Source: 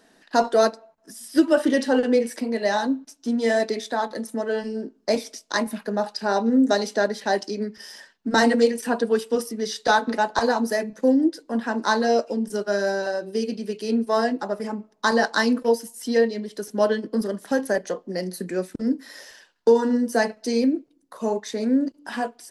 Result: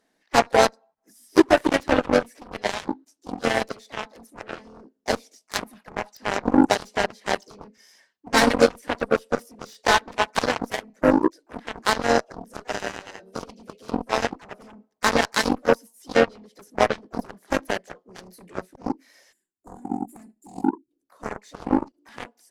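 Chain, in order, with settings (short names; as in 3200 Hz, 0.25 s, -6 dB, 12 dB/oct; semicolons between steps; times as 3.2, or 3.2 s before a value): harmoniser +3 st -6 dB, +4 st -16 dB, +7 st -18 dB; spectral gain 19.32–20.91, 390–6800 Hz -22 dB; added harmonics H 3 -37 dB, 7 -16 dB, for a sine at -3 dBFS; in parallel at -9.5 dB: overloaded stage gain 14.5 dB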